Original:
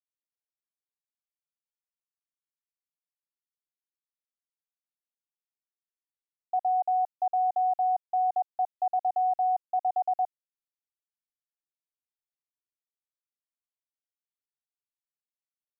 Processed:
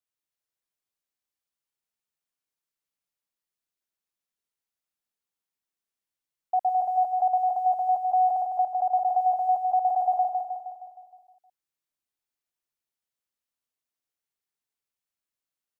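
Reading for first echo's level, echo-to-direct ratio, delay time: −4.0 dB, −2.5 dB, 156 ms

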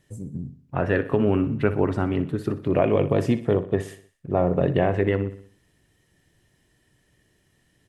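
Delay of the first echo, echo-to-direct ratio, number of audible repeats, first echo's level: 61 ms, −12.5 dB, 4, −14.0 dB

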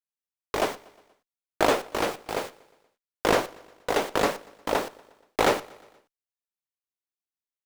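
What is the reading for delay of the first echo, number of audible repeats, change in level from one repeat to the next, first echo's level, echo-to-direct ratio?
119 ms, 3, −5.0 dB, −23.0 dB, −21.5 dB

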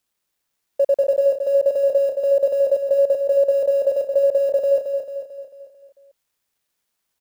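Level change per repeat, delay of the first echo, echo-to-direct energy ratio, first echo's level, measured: −6.0 dB, 222 ms, −5.0 dB, −6.5 dB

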